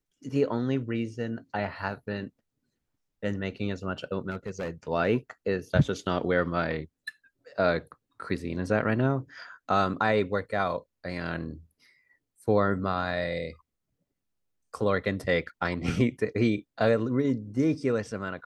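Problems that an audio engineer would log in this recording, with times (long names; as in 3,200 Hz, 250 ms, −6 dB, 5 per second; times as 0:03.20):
0:04.30–0:04.70: clipping −28 dBFS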